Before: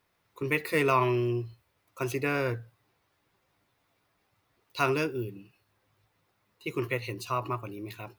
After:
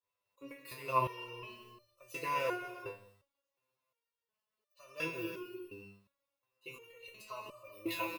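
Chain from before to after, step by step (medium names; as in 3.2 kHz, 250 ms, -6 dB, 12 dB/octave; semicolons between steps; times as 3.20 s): expander -58 dBFS; treble shelf 2.7 kHz +10 dB; de-hum 49.45 Hz, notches 6; compression 12:1, threshold -35 dBFS, peak gain reduction 17 dB; slow attack 304 ms; small resonant body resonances 550/1000/2700 Hz, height 15 dB, ringing for 35 ms; speakerphone echo 180 ms, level -19 dB; gated-style reverb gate 430 ms flat, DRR 4.5 dB; resonator arpeggio 2.8 Hz 100–600 Hz; trim +11 dB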